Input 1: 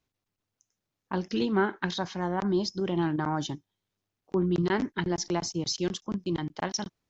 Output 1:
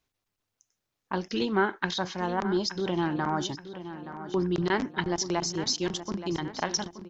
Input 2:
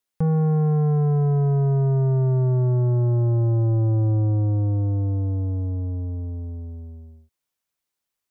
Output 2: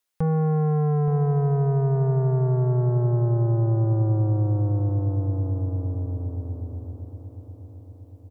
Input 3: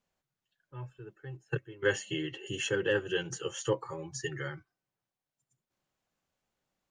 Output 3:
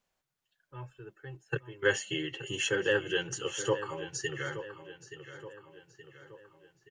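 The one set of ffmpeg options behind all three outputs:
-filter_complex "[0:a]equalizer=frequency=160:width=0.44:gain=-5.5,asplit=2[link_01][link_02];[link_02]adelay=874,lowpass=frequency=4100:poles=1,volume=-12dB,asplit=2[link_03][link_04];[link_04]adelay=874,lowpass=frequency=4100:poles=1,volume=0.52,asplit=2[link_05][link_06];[link_06]adelay=874,lowpass=frequency=4100:poles=1,volume=0.52,asplit=2[link_07][link_08];[link_08]adelay=874,lowpass=frequency=4100:poles=1,volume=0.52,asplit=2[link_09][link_10];[link_10]adelay=874,lowpass=frequency=4100:poles=1,volume=0.52[link_11];[link_03][link_05][link_07][link_09][link_11]amix=inputs=5:normalize=0[link_12];[link_01][link_12]amix=inputs=2:normalize=0,volume=3dB"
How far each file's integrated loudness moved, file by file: +0.5, −1.5, +1.5 LU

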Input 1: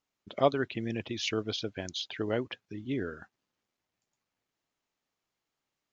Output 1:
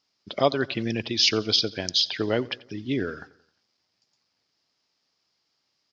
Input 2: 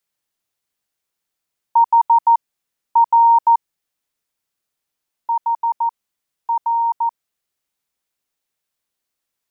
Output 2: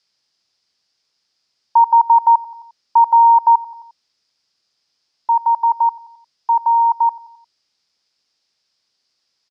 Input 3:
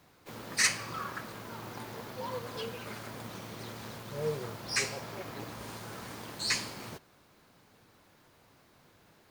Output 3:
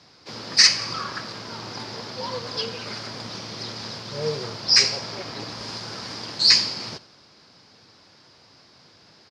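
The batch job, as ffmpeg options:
-filter_complex "[0:a]highpass=76,aecho=1:1:88|176|264|352:0.0841|0.0454|0.0245|0.0132,asplit=2[link_01][link_02];[link_02]alimiter=limit=-17.5dB:level=0:latency=1:release=230,volume=2dB[link_03];[link_01][link_03]amix=inputs=2:normalize=0,lowpass=frequency=5000:width_type=q:width=6.7,volume=-1dB"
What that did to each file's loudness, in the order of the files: +8.5, +2.5, +13.5 LU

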